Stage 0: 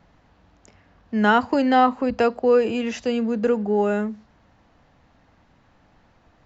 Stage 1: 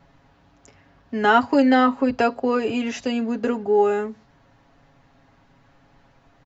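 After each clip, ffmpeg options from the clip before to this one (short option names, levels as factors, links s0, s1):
-af "aecho=1:1:7.3:0.65"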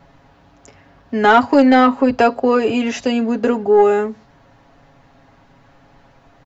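-af "acontrast=85,equalizer=f=630:t=o:w=1.5:g=2.5,volume=0.841"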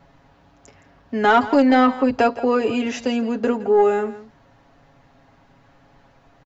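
-af "aecho=1:1:167:0.158,volume=0.631"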